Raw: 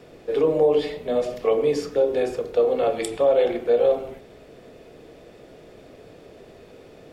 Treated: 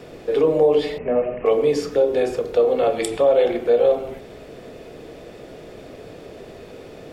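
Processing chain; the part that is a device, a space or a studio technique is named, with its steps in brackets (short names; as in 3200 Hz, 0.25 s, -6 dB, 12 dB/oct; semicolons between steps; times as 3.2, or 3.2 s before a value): parallel compression (in parallel at 0 dB: compressor, threshold -32 dBFS, peak gain reduction 16.5 dB); 0.98–1.46 on the sum: steep low-pass 2800 Hz 96 dB/oct; gain +1 dB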